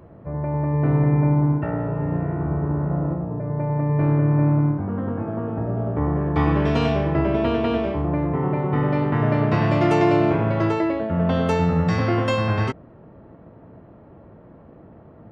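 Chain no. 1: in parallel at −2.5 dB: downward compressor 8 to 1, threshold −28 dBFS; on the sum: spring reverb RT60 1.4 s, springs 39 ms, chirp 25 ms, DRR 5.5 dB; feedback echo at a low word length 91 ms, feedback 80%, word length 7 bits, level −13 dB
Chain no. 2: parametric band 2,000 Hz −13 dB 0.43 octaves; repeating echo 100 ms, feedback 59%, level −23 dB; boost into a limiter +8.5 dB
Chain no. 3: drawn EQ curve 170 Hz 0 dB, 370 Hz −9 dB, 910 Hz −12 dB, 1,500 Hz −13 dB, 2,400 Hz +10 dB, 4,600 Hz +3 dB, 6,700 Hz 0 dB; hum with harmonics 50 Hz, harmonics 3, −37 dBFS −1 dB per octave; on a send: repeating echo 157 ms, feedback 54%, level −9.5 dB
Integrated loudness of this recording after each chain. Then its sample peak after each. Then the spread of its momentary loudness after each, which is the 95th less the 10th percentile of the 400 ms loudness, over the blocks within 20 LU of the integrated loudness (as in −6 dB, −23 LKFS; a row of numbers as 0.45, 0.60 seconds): −19.5, −13.5, −21.0 LKFS; −4.5, −1.0, −8.0 dBFS; 7, 8, 24 LU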